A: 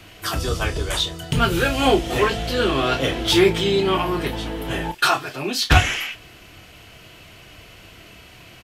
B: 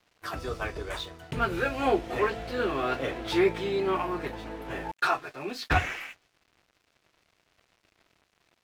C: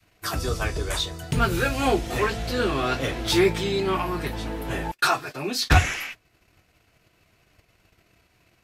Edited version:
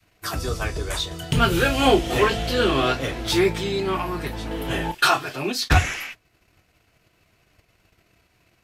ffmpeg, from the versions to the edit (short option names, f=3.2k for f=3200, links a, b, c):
-filter_complex "[0:a]asplit=2[a][b];[2:a]asplit=3[c][d][e];[c]atrim=end=1.112[f];[a]atrim=start=1.108:end=2.922[g];[d]atrim=start=2.918:end=4.512[h];[b]atrim=start=4.508:end=5.522[i];[e]atrim=start=5.518[j];[f][g]acrossfade=d=0.004:c1=hsin:c2=hsin[k];[k][h]acrossfade=d=0.004:c1=hsin:c2=hsin[l];[l][i]acrossfade=d=0.004:c1=hsin:c2=hsin[m];[m][j]acrossfade=d=0.004:c1=hsin:c2=hsin"